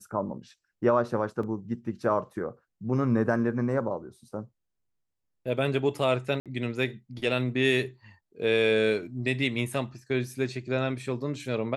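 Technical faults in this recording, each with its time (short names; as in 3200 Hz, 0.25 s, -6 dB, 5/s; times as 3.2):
1.43 gap 3.6 ms
6.4–6.46 gap 57 ms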